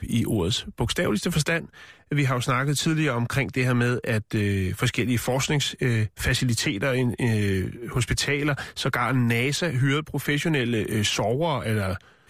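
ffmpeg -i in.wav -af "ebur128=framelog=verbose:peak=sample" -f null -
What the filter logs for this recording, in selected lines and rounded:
Integrated loudness:
  I:         -24.4 LUFS
  Threshold: -34.4 LUFS
Loudness range:
  LRA:         0.7 LU
  Threshold: -44.3 LUFS
  LRA low:   -24.6 LUFS
  LRA high:  -24.0 LUFS
Sample peak:
  Peak:      -11.4 dBFS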